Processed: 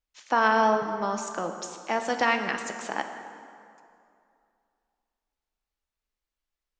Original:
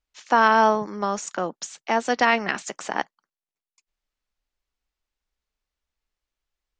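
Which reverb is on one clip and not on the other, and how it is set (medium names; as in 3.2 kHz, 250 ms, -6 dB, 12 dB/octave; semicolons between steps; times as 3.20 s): plate-style reverb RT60 2.5 s, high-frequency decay 0.65×, DRR 5.5 dB; trim -5 dB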